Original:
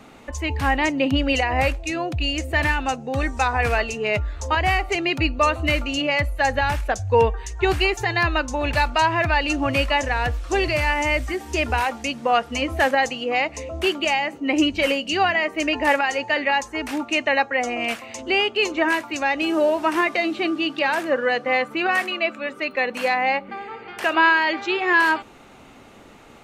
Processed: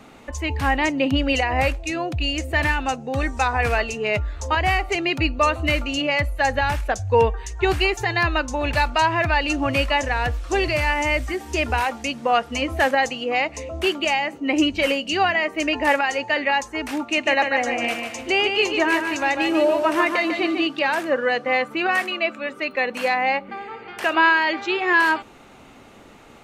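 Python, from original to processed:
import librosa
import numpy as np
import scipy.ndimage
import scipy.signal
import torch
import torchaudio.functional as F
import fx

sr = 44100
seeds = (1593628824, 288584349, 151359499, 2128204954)

y = fx.echo_feedback(x, sr, ms=147, feedback_pct=38, wet_db=-6.0, at=(17.03, 20.67))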